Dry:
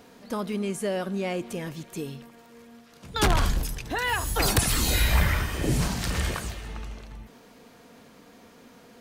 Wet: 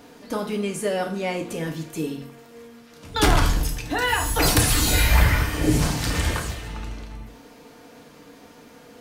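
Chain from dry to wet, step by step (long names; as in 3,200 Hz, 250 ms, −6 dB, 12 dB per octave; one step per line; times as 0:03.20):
feedback delay network reverb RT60 0.51 s, low-frequency decay 1×, high-frequency decay 0.9×, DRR 2.5 dB
level +2.5 dB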